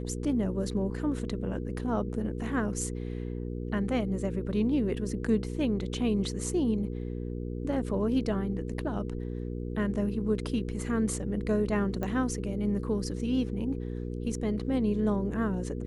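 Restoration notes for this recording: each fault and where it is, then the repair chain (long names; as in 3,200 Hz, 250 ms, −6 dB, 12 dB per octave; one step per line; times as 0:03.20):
mains hum 60 Hz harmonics 8 −35 dBFS
0:12.03: click −21 dBFS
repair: click removal
hum removal 60 Hz, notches 8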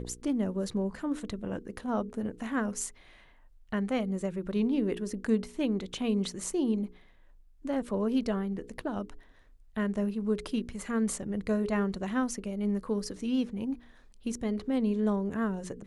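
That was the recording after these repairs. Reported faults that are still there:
none of them is left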